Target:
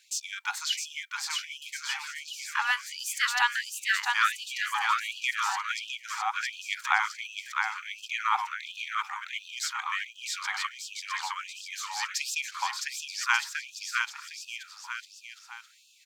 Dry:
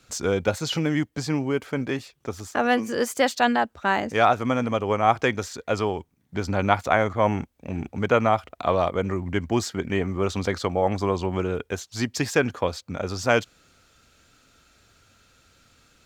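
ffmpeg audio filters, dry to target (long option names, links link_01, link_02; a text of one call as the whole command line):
ffmpeg -i in.wav -af "aecho=1:1:660|1188|1610|1948|2219:0.631|0.398|0.251|0.158|0.1,afftfilt=real='re*gte(b*sr/1024,750*pow(2500/750,0.5+0.5*sin(2*PI*1.4*pts/sr)))':imag='im*gte(b*sr/1024,750*pow(2500/750,0.5+0.5*sin(2*PI*1.4*pts/sr)))':win_size=1024:overlap=0.75" out.wav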